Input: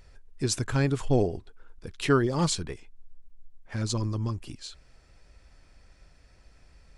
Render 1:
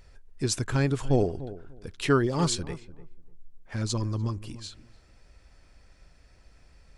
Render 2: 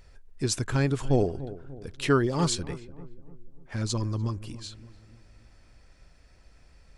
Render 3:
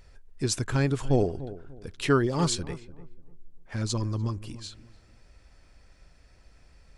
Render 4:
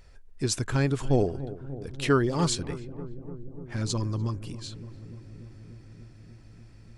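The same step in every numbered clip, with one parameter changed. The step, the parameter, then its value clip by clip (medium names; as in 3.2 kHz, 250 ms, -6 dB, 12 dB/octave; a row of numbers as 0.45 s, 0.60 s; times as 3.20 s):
filtered feedback delay, feedback: 20%, 50%, 30%, 85%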